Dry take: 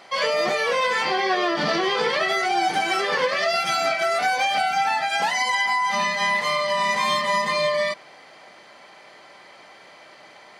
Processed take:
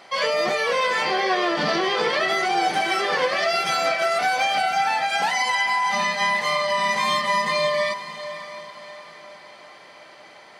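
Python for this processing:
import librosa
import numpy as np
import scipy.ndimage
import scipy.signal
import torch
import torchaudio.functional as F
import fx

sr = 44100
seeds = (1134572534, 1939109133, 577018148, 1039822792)

p1 = fx.notch(x, sr, hz=6900.0, q=29.0)
y = p1 + fx.echo_diffused(p1, sr, ms=588, feedback_pct=44, wet_db=-12.5, dry=0)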